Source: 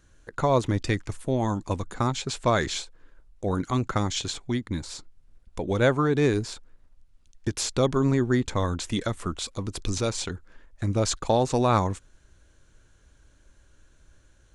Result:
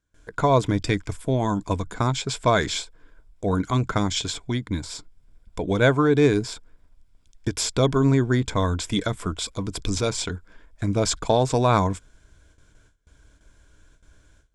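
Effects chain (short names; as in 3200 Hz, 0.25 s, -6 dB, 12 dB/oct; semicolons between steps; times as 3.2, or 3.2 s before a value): gate with hold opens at -48 dBFS; ripple EQ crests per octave 1.7, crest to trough 6 dB; gain +2.5 dB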